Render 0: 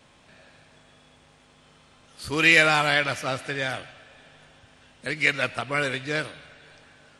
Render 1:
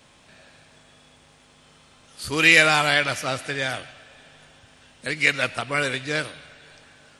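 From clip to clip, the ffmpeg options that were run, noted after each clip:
-af "highshelf=f=4.3k:g=6,volume=1dB"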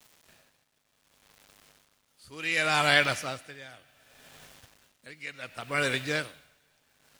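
-af "acrusher=bits=7:mix=0:aa=0.000001,aeval=exprs='val(0)*pow(10,-19*(0.5-0.5*cos(2*PI*0.67*n/s))/20)':c=same,volume=-1.5dB"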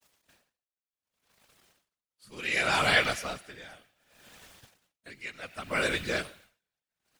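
-af "afftfilt=real='hypot(re,im)*cos(2*PI*random(0))':imag='hypot(re,im)*sin(2*PI*random(1))':win_size=512:overlap=0.75,agate=range=-33dB:threshold=-60dB:ratio=3:detection=peak,volume=5dB"

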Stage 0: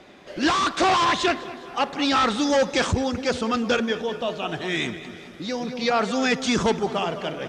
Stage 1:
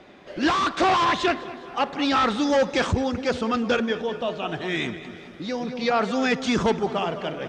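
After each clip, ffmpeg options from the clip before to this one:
-af "highshelf=f=6.1k:g=-11.5"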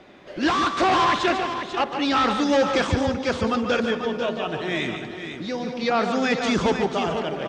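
-af "aecho=1:1:145|494:0.398|0.376"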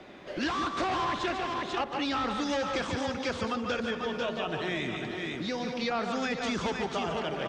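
-filter_complex "[0:a]acrossover=split=110|880[a][b][c];[a]acompressor=threshold=-46dB:ratio=4[d];[b]acompressor=threshold=-33dB:ratio=4[e];[c]acompressor=threshold=-34dB:ratio=4[f];[d][e][f]amix=inputs=3:normalize=0"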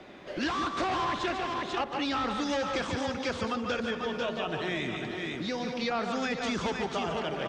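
-af anull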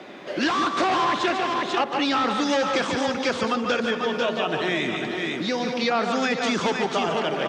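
-af "highpass=180,volume=8dB"

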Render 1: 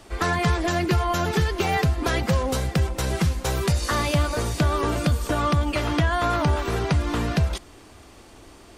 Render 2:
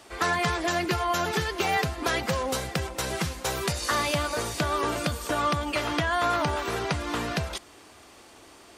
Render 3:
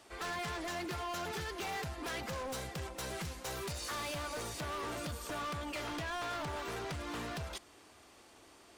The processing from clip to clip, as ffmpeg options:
-af "highpass=f=89:p=1,lowshelf=f=330:g=-9"
-af "asoftclip=type=hard:threshold=-28.5dB,volume=-8.5dB"

